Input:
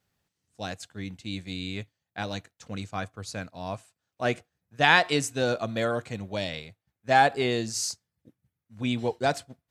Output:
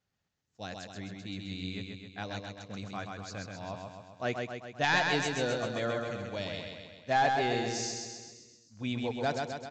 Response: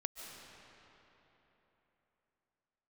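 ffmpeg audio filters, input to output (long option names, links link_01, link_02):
-filter_complex "[0:a]asoftclip=type=hard:threshold=-13dB,asplit=2[link_01][link_02];[link_02]aecho=0:1:131|262|393|524|655|786|917|1048:0.631|0.372|0.22|0.13|0.0765|0.0451|0.0266|0.0157[link_03];[link_01][link_03]amix=inputs=2:normalize=0,aresample=16000,aresample=44100,volume=-6.5dB"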